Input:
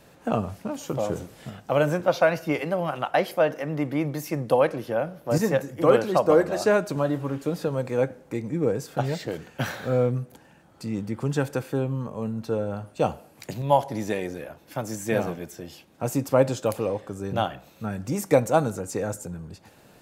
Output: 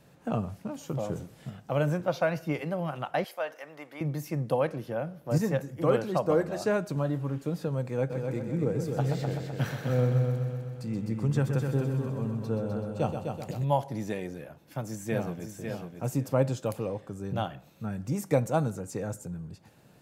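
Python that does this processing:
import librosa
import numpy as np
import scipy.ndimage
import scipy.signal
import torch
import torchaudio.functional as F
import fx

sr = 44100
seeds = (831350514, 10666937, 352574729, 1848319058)

y = fx.highpass(x, sr, hz=730.0, slope=12, at=(3.24, 4.01))
y = fx.echo_heads(y, sr, ms=127, heads='first and second', feedback_pct=55, wet_db=-8, at=(8.09, 13.63), fade=0.02)
y = fx.echo_throw(y, sr, start_s=14.83, length_s=0.76, ms=550, feedback_pct=15, wet_db=-6.0)
y = fx.peak_eq(y, sr, hz=140.0, db=8.0, octaves=1.2)
y = y * 10.0 ** (-7.5 / 20.0)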